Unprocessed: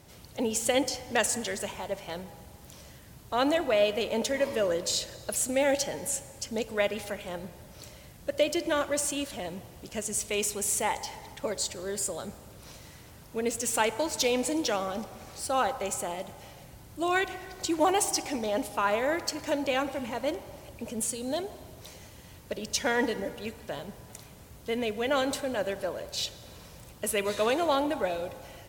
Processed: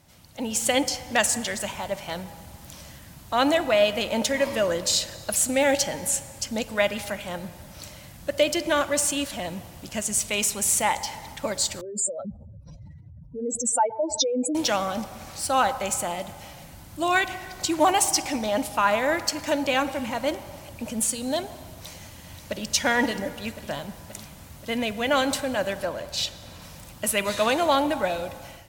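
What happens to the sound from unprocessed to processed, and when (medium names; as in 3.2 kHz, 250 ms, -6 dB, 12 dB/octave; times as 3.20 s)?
11.81–14.55 s: spectral contrast enhancement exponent 3.3
21.73–22.71 s: echo throw 530 ms, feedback 65%, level -8.5 dB
25.85–26.62 s: treble shelf 6.2 kHz -5 dB
whole clip: peaking EQ 420 Hz -10.5 dB 0.48 oct; hum notches 60/120 Hz; level rider gain up to 9 dB; trim -2.5 dB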